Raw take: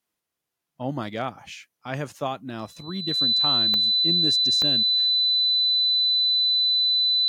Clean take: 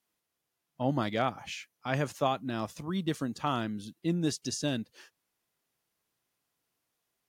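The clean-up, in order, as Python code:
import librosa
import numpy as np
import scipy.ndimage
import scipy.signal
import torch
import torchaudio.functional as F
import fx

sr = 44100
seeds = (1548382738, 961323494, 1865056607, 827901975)

y = fx.fix_declick_ar(x, sr, threshold=10.0)
y = fx.notch(y, sr, hz=4000.0, q=30.0)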